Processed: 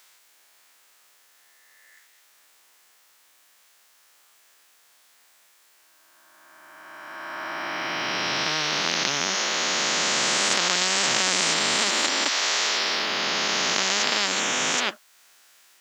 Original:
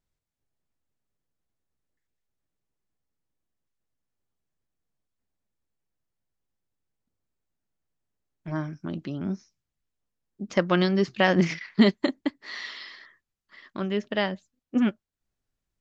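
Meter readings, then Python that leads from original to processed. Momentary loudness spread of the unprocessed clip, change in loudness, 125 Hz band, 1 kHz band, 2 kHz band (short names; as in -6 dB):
17 LU, +4.5 dB, -10.5 dB, +8.0 dB, +9.5 dB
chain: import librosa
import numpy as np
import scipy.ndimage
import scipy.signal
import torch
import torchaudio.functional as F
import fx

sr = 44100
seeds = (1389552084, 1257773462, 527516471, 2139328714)

y = fx.spec_swells(x, sr, rise_s=2.63)
y = scipy.signal.sosfilt(scipy.signal.butter(2, 1100.0, 'highpass', fs=sr, output='sos'), y)
y = fx.spectral_comp(y, sr, ratio=10.0)
y = y * 10.0 ** (5.0 / 20.0)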